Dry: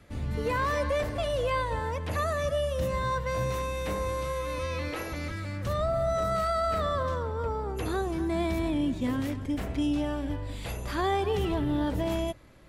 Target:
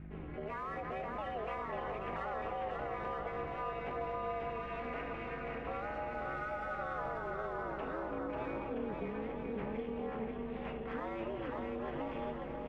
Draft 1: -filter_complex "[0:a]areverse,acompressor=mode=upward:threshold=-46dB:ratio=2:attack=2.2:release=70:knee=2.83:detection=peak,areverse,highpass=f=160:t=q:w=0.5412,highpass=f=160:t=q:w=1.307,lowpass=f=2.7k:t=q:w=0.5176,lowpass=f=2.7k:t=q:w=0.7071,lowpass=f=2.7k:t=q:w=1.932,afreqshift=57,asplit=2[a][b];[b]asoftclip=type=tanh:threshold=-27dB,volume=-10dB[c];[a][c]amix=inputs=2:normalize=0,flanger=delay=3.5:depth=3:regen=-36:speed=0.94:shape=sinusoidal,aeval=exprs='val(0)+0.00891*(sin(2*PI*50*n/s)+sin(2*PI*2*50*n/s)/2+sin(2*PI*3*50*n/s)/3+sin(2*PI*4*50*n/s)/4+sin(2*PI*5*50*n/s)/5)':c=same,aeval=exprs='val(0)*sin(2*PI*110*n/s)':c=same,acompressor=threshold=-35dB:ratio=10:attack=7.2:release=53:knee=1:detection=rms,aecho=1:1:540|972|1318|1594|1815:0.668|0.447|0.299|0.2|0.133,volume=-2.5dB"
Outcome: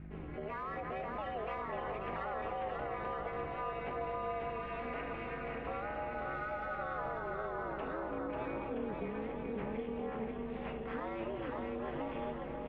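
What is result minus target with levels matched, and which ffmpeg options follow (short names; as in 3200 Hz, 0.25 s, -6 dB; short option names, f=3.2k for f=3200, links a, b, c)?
soft clip: distortion -8 dB
-filter_complex "[0:a]areverse,acompressor=mode=upward:threshold=-46dB:ratio=2:attack=2.2:release=70:knee=2.83:detection=peak,areverse,highpass=f=160:t=q:w=0.5412,highpass=f=160:t=q:w=1.307,lowpass=f=2.7k:t=q:w=0.5176,lowpass=f=2.7k:t=q:w=0.7071,lowpass=f=2.7k:t=q:w=1.932,afreqshift=57,asplit=2[a][b];[b]asoftclip=type=tanh:threshold=-36.5dB,volume=-10dB[c];[a][c]amix=inputs=2:normalize=0,flanger=delay=3.5:depth=3:regen=-36:speed=0.94:shape=sinusoidal,aeval=exprs='val(0)+0.00891*(sin(2*PI*50*n/s)+sin(2*PI*2*50*n/s)/2+sin(2*PI*3*50*n/s)/3+sin(2*PI*4*50*n/s)/4+sin(2*PI*5*50*n/s)/5)':c=same,aeval=exprs='val(0)*sin(2*PI*110*n/s)':c=same,acompressor=threshold=-35dB:ratio=10:attack=7.2:release=53:knee=1:detection=rms,aecho=1:1:540|972|1318|1594|1815:0.668|0.447|0.299|0.2|0.133,volume=-2.5dB"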